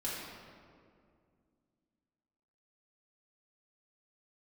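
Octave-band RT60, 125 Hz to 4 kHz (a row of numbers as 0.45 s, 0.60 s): 2.8 s, 3.1 s, 2.4 s, 2.0 s, 1.6 s, 1.2 s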